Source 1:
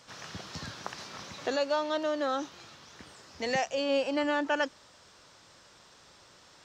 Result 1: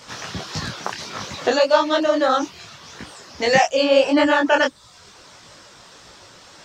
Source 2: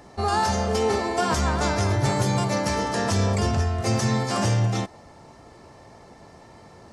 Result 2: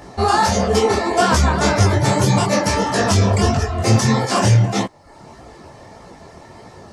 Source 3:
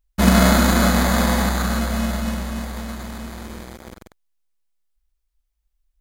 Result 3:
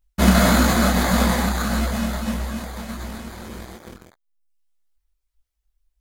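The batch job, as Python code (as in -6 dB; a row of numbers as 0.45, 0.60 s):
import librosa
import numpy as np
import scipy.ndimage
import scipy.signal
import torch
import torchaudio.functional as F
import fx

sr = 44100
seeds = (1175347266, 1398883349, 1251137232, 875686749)

p1 = fx.dereverb_blind(x, sr, rt60_s=0.66)
p2 = 10.0 ** (-15.5 / 20.0) * np.tanh(p1 / 10.0 ** (-15.5 / 20.0))
p3 = p1 + F.gain(torch.from_numpy(p2), -11.5).numpy()
p4 = fx.detune_double(p3, sr, cents=57)
y = librosa.util.normalize(p4) * 10.0 ** (-3 / 20.0)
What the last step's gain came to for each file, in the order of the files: +15.0, +10.5, +3.5 dB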